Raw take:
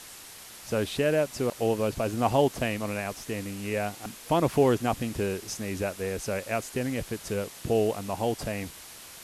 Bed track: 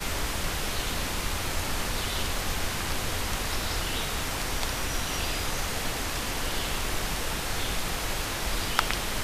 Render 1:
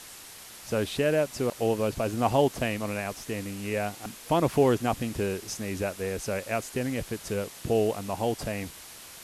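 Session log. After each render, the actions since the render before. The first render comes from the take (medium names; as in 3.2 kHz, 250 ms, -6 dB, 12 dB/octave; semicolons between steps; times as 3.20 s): no audible change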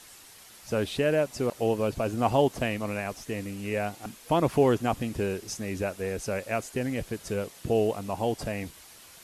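noise reduction 6 dB, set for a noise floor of -46 dBFS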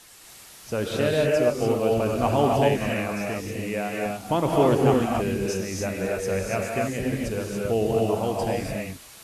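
gated-style reverb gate 310 ms rising, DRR -2 dB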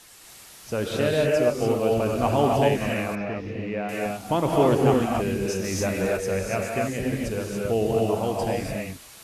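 3.15–3.89 s: distance through air 280 m; 5.64–6.17 s: waveshaping leveller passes 1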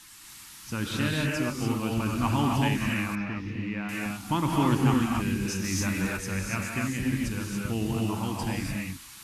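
high-order bell 540 Hz -16 dB 1.1 oct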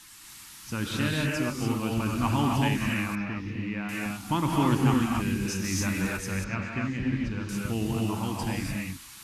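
6.44–7.49 s: distance through air 200 m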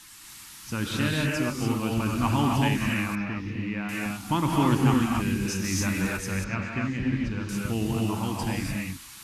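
trim +1.5 dB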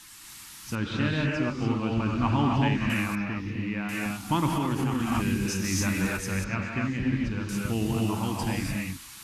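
0.75–2.90 s: distance through air 160 m; 4.48–5.12 s: compression, threshold -23 dBFS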